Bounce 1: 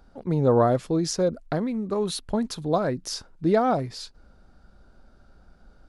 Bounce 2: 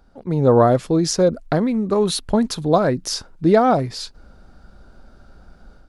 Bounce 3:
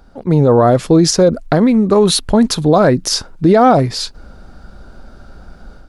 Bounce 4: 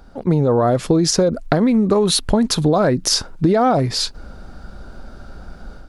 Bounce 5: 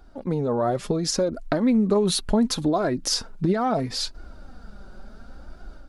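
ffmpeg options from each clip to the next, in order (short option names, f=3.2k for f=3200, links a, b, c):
-af "dynaudnorm=f=240:g=3:m=8dB"
-af "alimiter=level_in=10dB:limit=-1dB:release=50:level=0:latency=1,volume=-1dB"
-af "acompressor=threshold=-13dB:ratio=6,volume=1dB"
-af "flanger=delay=2.7:depth=2.8:regen=32:speed=0.71:shape=triangular,volume=-3.5dB"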